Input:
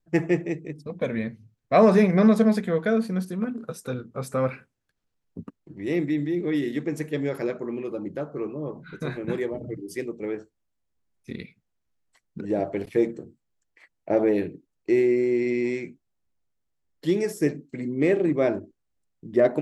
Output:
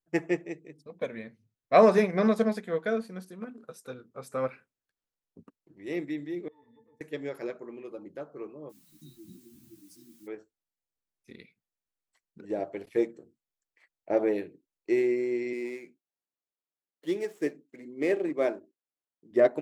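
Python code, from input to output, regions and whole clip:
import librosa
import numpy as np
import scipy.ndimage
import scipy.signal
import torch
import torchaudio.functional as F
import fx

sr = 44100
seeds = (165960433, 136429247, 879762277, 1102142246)

y = fx.chain(x, sr, fx.tube_stage(drive_db=31.0, bias=0.55),
    fx.peak_eq(hz=4000.0, db=-7.0, octaves=0.63),
    fx.octave_resonator(note='A', decay_s=0.17), at=(6.48, 7.01))
y = fx.brickwall_bandstop(y, sr, low_hz=350.0, high_hz=3700.0, at=(8.69, 10.26), fade=0.02)
y = fx.dmg_noise_colour(y, sr, seeds[0], colour='blue', level_db=-50.0, at=(8.69, 10.26), fade=0.02)
y = fx.ensemble(y, sr, at=(8.69, 10.26), fade=0.02)
y = fx.chain(y, sr, fx.median_filter(points=9),
    fx.highpass(hz=200.0, slope=12), at=(15.53, 19.31))
y = fx.bass_treble(y, sr, bass_db=-9, treble_db=1)
y = fx.upward_expand(y, sr, threshold_db=-34.0, expansion=1.5)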